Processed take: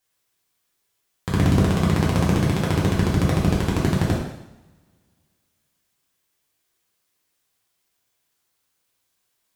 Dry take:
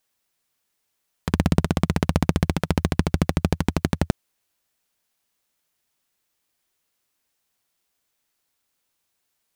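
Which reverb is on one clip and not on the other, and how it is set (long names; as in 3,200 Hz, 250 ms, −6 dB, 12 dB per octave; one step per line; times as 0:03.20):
coupled-rooms reverb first 0.81 s, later 2.3 s, from −25 dB, DRR −5 dB
level −4 dB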